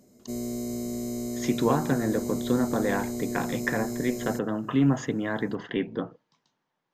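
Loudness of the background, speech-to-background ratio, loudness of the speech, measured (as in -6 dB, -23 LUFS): -33.0 LUFS, 5.0 dB, -28.0 LUFS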